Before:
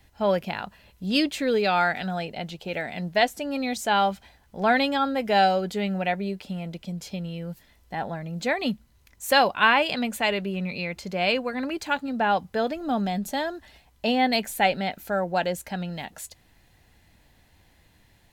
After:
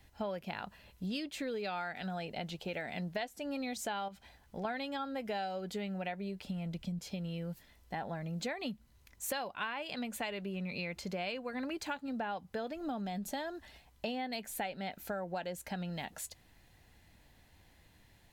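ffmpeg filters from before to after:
-filter_complex "[0:a]asettb=1/sr,asplit=3[s0][s1][s2];[s0]atrim=end=4.084[s3];[s1]atrim=start=4.08:end=4.65,asetpts=PTS-STARTPTS,afade=t=in:d=0.004:c=qsin,afade=t=out:st=0.566:d=0.004:c=qsin,acompressor=threshold=0.0282:ratio=6:attack=3.2:release=140:knee=1:detection=peak[s4];[s2]atrim=start=4.646[s5];[s3][s4]acrossfade=d=0.004:c1=hsin:c2=qsin[s6];[s6][s5]acrossfade=d=0.004:c1=qsin:c2=hsin,asettb=1/sr,asplit=3[s7][s8][s9];[s7]atrim=end=6.154[s10];[s8]atrim=start=6.15:end=6.99,asetpts=PTS-STARTPTS,afade=t=in:d=0.004:c=qsin,afade=t=out:st=0.836:d=0.004:c=qsin,asubboost=boost=8.5:cutoff=220[s11];[s9]atrim=start=6.986[s12];[s10][s11]acrossfade=d=0.004:c1=hsin:c2=qsin[s13];[s13][s12]acrossfade=d=0.004:c1=qsin:c2=hsin,acompressor=threshold=0.0282:ratio=10,volume=0.631"

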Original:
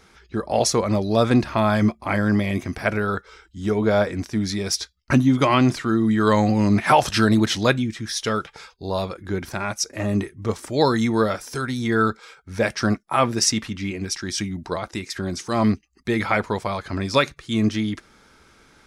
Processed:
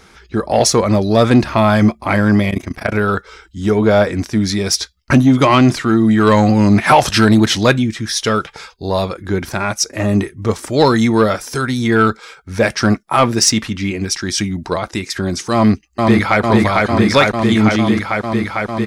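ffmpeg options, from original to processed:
-filter_complex "[0:a]asettb=1/sr,asplit=3[s0][s1][s2];[s0]atrim=end=2.504[s3];[s1]atrim=start=2.5:end=2.94,asetpts=PTS-STARTPTS,afade=t=in:d=0.004:c=qsin,afade=t=out:st=0.436:d=0.004:c=qsin,tremolo=f=28:d=0.919[s4];[s2]atrim=start=2.936[s5];[s3][s4]acrossfade=d=0.004:c1=hsin:c2=qsin[s6];[s6][s5]acrossfade=d=0.004:c1=qsin:c2=hsin,asplit=2[s7][s8];[s8]afade=t=in:st=15.53:d=0.01,afade=t=out:st=16.41:d=0.01,aecho=0:1:450|900|1350|1800|2250|2700|3150|3600|4050|4500|4950|5400:0.841395|0.715186|0.607908|0.516722|0.439214|0.373331|0.317332|0.269732|0.229272|0.194881|0.165649|0.140802[s9];[s7][s9]amix=inputs=2:normalize=0,acontrast=82,volume=1.12"

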